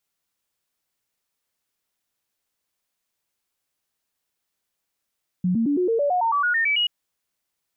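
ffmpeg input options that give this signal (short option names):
-f lavfi -i "aevalsrc='0.126*clip(min(mod(t,0.11),0.11-mod(t,0.11))/0.005,0,1)*sin(2*PI*181*pow(2,floor(t/0.11)/3)*mod(t,0.11))':d=1.43:s=44100"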